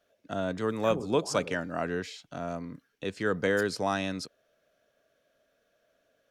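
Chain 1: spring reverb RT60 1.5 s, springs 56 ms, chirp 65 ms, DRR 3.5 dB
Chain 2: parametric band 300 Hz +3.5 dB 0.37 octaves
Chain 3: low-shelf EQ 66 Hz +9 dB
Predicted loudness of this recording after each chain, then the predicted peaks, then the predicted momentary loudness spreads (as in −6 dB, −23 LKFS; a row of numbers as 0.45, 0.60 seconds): −29.5, −30.5, −31.0 LKFS; −12.5, −13.0, −13.5 dBFS; 13, 12, 12 LU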